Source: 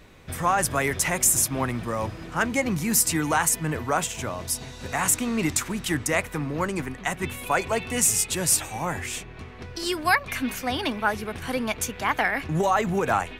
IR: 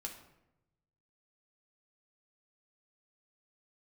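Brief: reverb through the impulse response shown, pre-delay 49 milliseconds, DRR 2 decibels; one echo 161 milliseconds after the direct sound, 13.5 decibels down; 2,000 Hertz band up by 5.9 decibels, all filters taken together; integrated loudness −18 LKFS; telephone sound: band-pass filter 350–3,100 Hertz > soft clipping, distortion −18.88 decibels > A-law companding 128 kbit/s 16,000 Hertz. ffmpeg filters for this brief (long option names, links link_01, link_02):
-filter_complex "[0:a]equalizer=frequency=2000:width_type=o:gain=8,aecho=1:1:161:0.211,asplit=2[link_01][link_02];[1:a]atrim=start_sample=2205,adelay=49[link_03];[link_02][link_03]afir=irnorm=-1:irlink=0,volume=0.5dB[link_04];[link_01][link_04]amix=inputs=2:normalize=0,highpass=350,lowpass=3100,asoftclip=threshold=-9.5dB,volume=5dB" -ar 16000 -c:a pcm_alaw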